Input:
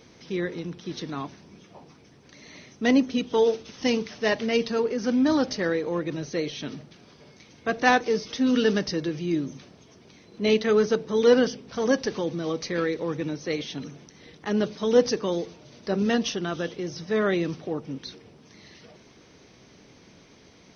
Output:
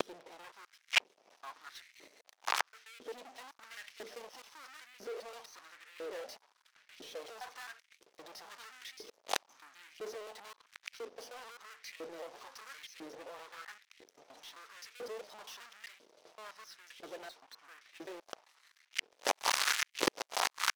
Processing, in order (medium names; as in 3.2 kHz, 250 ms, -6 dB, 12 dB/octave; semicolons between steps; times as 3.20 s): slices played last to first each 130 ms, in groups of 7; fuzz box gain 42 dB, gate -49 dBFS; LFO high-pass saw up 1 Hz 370–2500 Hz; inverted gate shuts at -19 dBFS, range -40 dB; waveshaping leveller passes 1; trim +4.5 dB